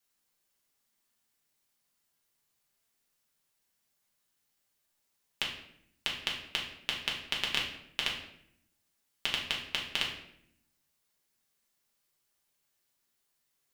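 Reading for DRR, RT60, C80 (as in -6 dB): -3.0 dB, 0.70 s, 8.5 dB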